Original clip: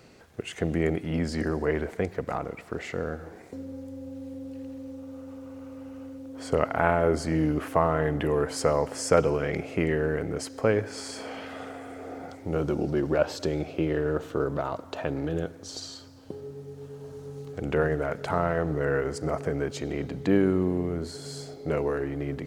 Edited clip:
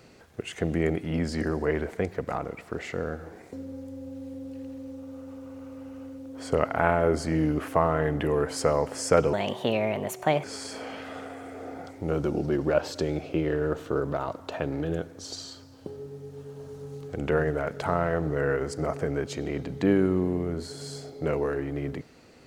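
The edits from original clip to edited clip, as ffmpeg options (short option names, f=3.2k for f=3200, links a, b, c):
-filter_complex "[0:a]asplit=3[a][b][c];[a]atrim=end=9.334[d];[b]atrim=start=9.33:end=10.88,asetpts=PTS-STARTPTS,asetrate=61740,aresample=44100[e];[c]atrim=start=10.876[f];[d][e]acrossfade=d=0.004:c1=hsin:c2=hsin[g];[g][f]acrossfade=d=0.004:c1=hsin:c2=hsin"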